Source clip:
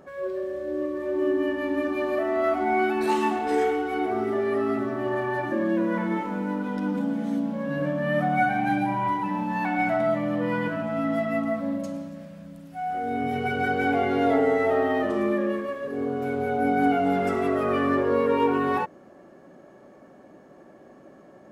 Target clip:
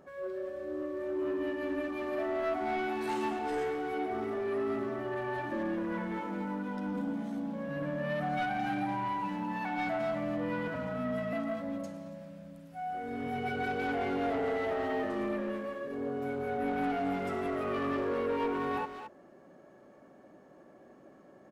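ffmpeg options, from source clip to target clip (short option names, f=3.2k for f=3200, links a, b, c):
-filter_complex "[0:a]asoftclip=type=tanh:threshold=-20dB,asettb=1/sr,asplit=3[a][b][c];[a]atrim=end=10.744[d];[b]atrim=start=10.74:end=11.33,asetpts=PTS-STARTPTS,afade=t=in:d=0.004:c=qsin,afade=t=out:st=0.586:d=0.004:c=qsin,afreqshift=-31[e];[c]atrim=start=11.326[f];[d][e]acrossfade=d=0.004:c1=hsin:c2=qsin[g];[g][f]acrossfade=d=0.004:c1=qsin:c2=hsin,asplit=2[h][i];[i]adelay=220,highpass=300,lowpass=3.4k,asoftclip=type=hard:threshold=-27dB,volume=-7dB[j];[h][j]amix=inputs=2:normalize=0,volume=-7dB"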